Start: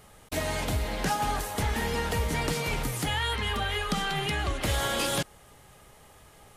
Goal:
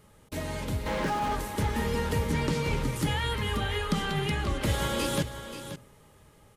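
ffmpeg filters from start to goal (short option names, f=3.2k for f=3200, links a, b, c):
-filter_complex "[0:a]dynaudnorm=f=400:g=7:m=4dB,asettb=1/sr,asplit=3[a][b][c];[a]atrim=end=0.864[d];[b]atrim=start=0.86:end=1.35,asetpts=PTS-STARTPTS,afade=t=in:d=0.004:c=qsin,afade=t=out:st=0.486:d=0.004:c=qsin,asplit=2[e][f];[f]highpass=f=720:p=1,volume=34dB,asoftclip=type=tanh:threshold=-17dB[g];[e][g]amix=inputs=2:normalize=0,lowpass=f=1.6k:p=1,volume=-6dB[h];[c]atrim=start=1.346[i];[d][h]acrossfade=d=0.004:c1=hsin:c2=qsin[j];[j][i]acrossfade=d=0.004:c1=qsin:c2=hsin,asuperstop=centerf=720:order=4:qfactor=5.6,lowshelf=f=450:g=11,asplit=2[k][l];[l]aecho=0:1:532:0.282[m];[k][m]amix=inputs=2:normalize=0,asettb=1/sr,asplit=3[n][o][p];[n]atrim=end=2.324[q];[o]atrim=start=2.32:end=2.96,asetpts=PTS-STARTPTS,afade=t=in:d=0.004:c=qsin,afade=t=out:st=0.636:d=0.004:c=qsin,acrossover=split=7900[r][s];[s]acompressor=threshold=-46dB:ratio=4:attack=1:release=60[t];[r][t]amix=inputs=2:normalize=0[u];[p]atrim=start=2.956[v];[q][u]acrossfade=d=0.004:c1=hsin:c2=qsin[w];[w][v]acrossfade=d=0.004:c1=qsin:c2=hsin,lowshelf=f=82:g=-9.5,bandreject=f=62.02:t=h:w=4,bandreject=f=124.04:t=h:w=4,bandreject=f=186.06:t=h:w=4,bandreject=f=248.08:t=h:w=4,bandreject=f=310.1:t=h:w=4,bandreject=f=372.12:t=h:w=4,bandreject=f=434.14:t=h:w=4,bandreject=f=496.16:t=h:w=4,bandreject=f=558.18:t=h:w=4,bandreject=f=620.2:t=h:w=4,bandreject=f=682.22:t=h:w=4,bandreject=f=744.24:t=h:w=4,bandreject=f=806.26:t=h:w=4,volume=-7.5dB"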